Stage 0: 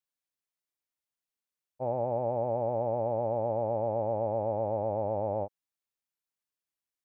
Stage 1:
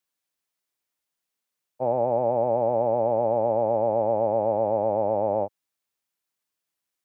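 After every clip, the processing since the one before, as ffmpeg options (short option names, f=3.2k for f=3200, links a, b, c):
-filter_complex "[0:a]lowshelf=f=79:g=-8.5,acrossover=split=120[a][b];[a]alimiter=level_in=32.5dB:limit=-24dB:level=0:latency=1,volume=-32.5dB[c];[c][b]amix=inputs=2:normalize=0,volume=7.5dB"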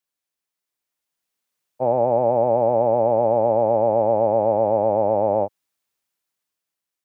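-af "dynaudnorm=f=260:g=9:m=7dB,volume=-2dB"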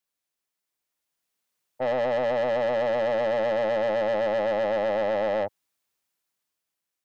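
-af "asoftclip=type=tanh:threshold=-21.5dB"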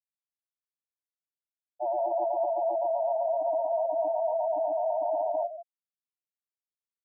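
-filter_complex "[0:a]afreqshift=92,asplit=2[a][b];[b]adelay=163.3,volume=-8dB,highshelf=f=4k:g=-3.67[c];[a][c]amix=inputs=2:normalize=0,afftfilt=real='re*gte(hypot(re,im),0.158)':imag='im*gte(hypot(re,im),0.158)':win_size=1024:overlap=0.75,volume=-3dB"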